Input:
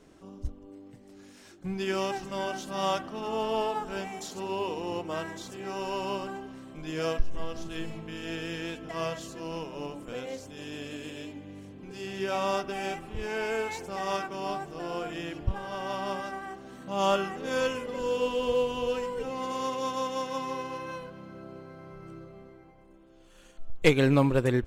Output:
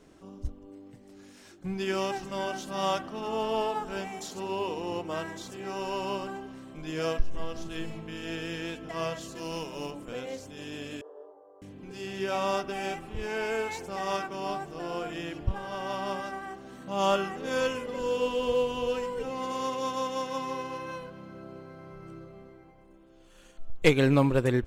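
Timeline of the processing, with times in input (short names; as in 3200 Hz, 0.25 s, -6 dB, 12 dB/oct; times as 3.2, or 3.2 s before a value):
9.35–9.91 high shelf 3700 Hz +11 dB
11.01–11.62 elliptic band-pass 420–1200 Hz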